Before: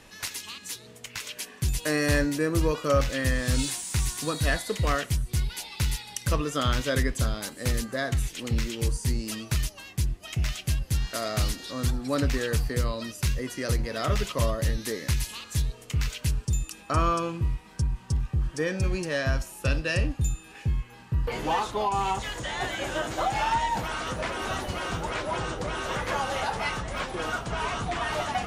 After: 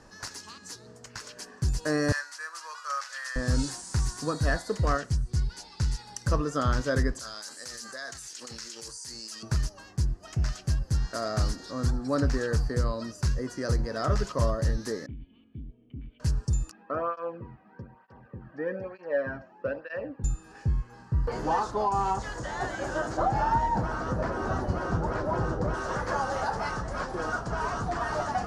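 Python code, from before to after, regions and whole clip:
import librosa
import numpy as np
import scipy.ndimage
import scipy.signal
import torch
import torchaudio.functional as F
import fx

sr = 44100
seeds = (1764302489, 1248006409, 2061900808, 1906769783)

y = fx.chain(x, sr, fx.cvsd(bps=64000),
    fx.highpass(hz=1100.0, slope=24), at=(2.12, 3.36))
y = fx.chain(y, sr, fx.lowpass(hz=9800.0, slope=12),
    fx.peak_eq(hz=820.0, db=-4.5, octaves=2.9), at=(4.97, 5.99))
y = fx.chain(y, sr, fx.bandpass_q(hz=7700.0, q=0.54),
    fx.env_flatten(amount_pct=70), at=(7.19, 9.43))
y = fx.chain(y, sr, fx.peak_eq(hz=690.0, db=5.0, octaves=0.29),
    fx.clip_hard(threshold_db=-24.0),
    fx.formant_cascade(vowel='i'), at=(15.06, 16.2))
y = fx.chain(y, sr, fx.cabinet(low_hz=140.0, low_slope=12, high_hz=2600.0, hz=(150.0, 340.0, 530.0, 1200.0), db=(-10, -6, 6, -5)),
    fx.flanger_cancel(hz=1.1, depth_ms=2.3), at=(16.71, 20.24))
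y = fx.chain(y, sr, fx.highpass(hz=86.0, slope=6),
    fx.tilt_eq(slope=-2.5), at=(23.17, 25.74))
y = scipy.signal.sosfilt(scipy.signal.butter(2, 5900.0, 'lowpass', fs=sr, output='sos'), y)
y = fx.band_shelf(y, sr, hz=2800.0, db=-13.5, octaves=1.1)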